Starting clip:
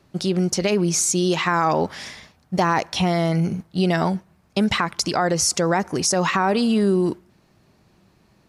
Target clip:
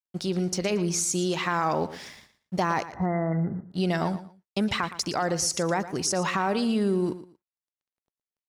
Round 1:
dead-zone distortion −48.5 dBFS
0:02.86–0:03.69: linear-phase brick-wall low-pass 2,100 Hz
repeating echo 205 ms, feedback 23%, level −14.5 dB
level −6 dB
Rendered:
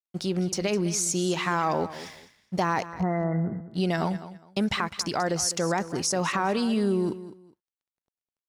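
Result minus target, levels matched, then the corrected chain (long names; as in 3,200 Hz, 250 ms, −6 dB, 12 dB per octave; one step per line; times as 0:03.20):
echo 90 ms late
dead-zone distortion −48.5 dBFS
0:02.86–0:03.69: linear-phase brick-wall low-pass 2,100 Hz
repeating echo 115 ms, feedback 23%, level −14.5 dB
level −6 dB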